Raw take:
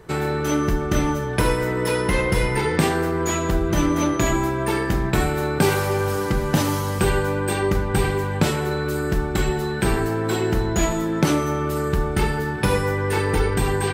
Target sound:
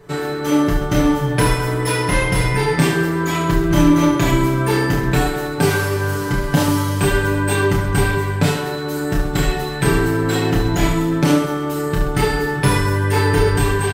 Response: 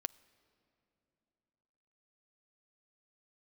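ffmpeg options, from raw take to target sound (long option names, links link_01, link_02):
-filter_complex "[0:a]aecho=1:1:7:0.84,dynaudnorm=framelen=190:gausssize=5:maxgain=5.5dB,asplit=2[link_01][link_02];[link_02]aecho=0:1:30|72|130.8|213.1|328.4:0.631|0.398|0.251|0.158|0.1[link_03];[link_01][link_03]amix=inputs=2:normalize=0,volume=-2.5dB"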